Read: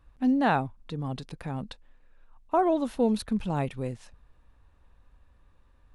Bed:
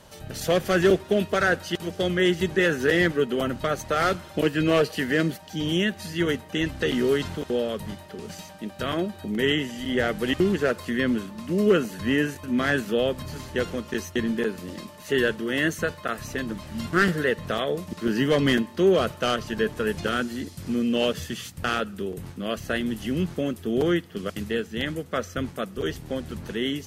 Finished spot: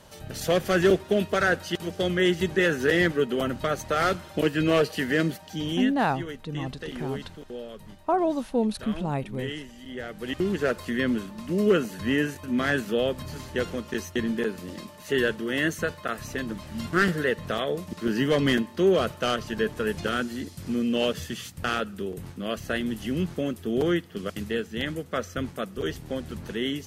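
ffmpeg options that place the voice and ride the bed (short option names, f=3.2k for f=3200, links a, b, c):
-filter_complex "[0:a]adelay=5550,volume=0dB[a];[1:a]volume=9.5dB,afade=t=out:st=5.48:d=0.57:silence=0.281838,afade=t=in:st=10.1:d=0.59:silence=0.298538[b];[a][b]amix=inputs=2:normalize=0"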